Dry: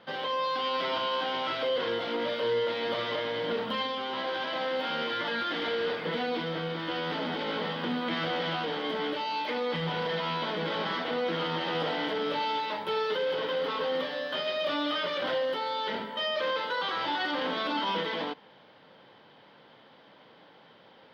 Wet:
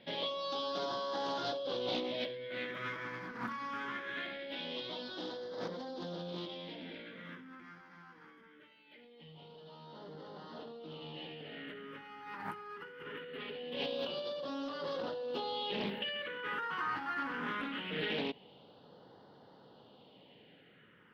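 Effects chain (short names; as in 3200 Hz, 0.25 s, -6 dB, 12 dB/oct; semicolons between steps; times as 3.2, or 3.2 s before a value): Doppler pass-by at 8.78, 21 m/s, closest 13 m; negative-ratio compressor -55 dBFS, ratio -1; phaser stages 4, 0.22 Hz, lowest notch 580–2400 Hz; Doppler distortion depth 0.26 ms; gain +13.5 dB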